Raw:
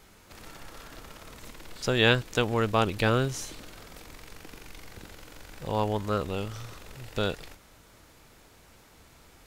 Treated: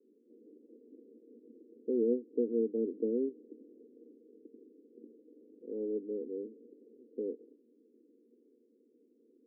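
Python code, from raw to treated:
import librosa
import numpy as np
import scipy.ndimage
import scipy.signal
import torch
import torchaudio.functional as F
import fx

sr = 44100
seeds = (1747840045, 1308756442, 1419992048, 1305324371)

y = fx.rotary_switch(x, sr, hz=5.5, then_hz=0.6, switch_at_s=2.45)
y = scipy.signal.sosfilt(scipy.signal.cheby1(4, 1.0, [230.0, 480.0], 'bandpass', fs=sr, output='sos'), y)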